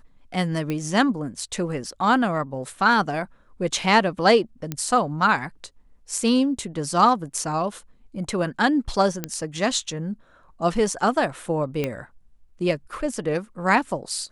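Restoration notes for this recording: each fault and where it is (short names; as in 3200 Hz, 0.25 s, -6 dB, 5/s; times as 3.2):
0.7 pop -15 dBFS
4.72 pop -13 dBFS
9.24 pop -10 dBFS
11.84 pop -12 dBFS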